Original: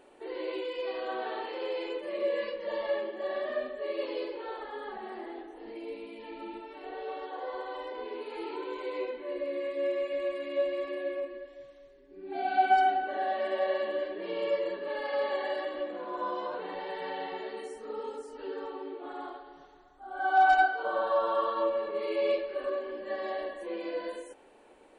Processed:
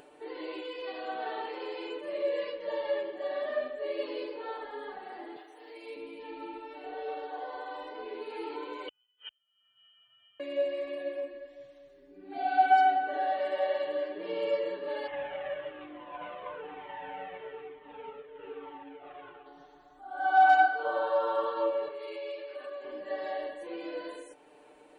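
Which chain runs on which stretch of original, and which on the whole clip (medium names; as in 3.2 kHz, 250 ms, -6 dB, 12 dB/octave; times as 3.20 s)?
5.36–5.96 s: high-pass 400 Hz + tilt EQ +2.5 dB/octave
8.88–10.40 s: inverted gate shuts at -30 dBFS, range -42 dB + frequency inversion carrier 3.5 kHz
15.07–19.46 s: CVSD coder 16 kbps + doubling 43 ms -13.5 dB + Shepard-style flanger falling 1.1 Hz
21.88–22.85 s: high-pass 750 Hz 6 dB/octave + compression 3:1, threshold -37 dBFS
whole clip: high-pass 42 Hz; comb 6.7 ms, depth 71%; upward compressor, threshold -48 dBFS; trim -3 dB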